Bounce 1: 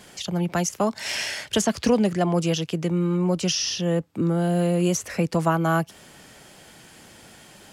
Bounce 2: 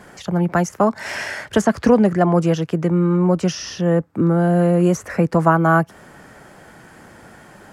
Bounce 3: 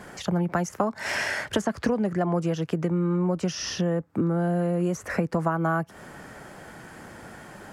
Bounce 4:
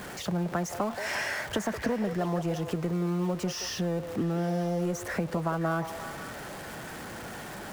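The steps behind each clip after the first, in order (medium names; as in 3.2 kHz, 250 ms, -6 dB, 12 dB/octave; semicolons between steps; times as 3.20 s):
resonant high shelf 2.2 kHz -10 dB, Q 1.5; trim +6 dB
compression 6:1, threshold -22 dBFS, peak gain reduction 13.5 dB
jump at every zero crossing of -32 dBFS; repeats whose band climbs or falls 175 ms, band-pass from 560 Hz, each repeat 0.7 oct, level -6 dB; trim -6 dB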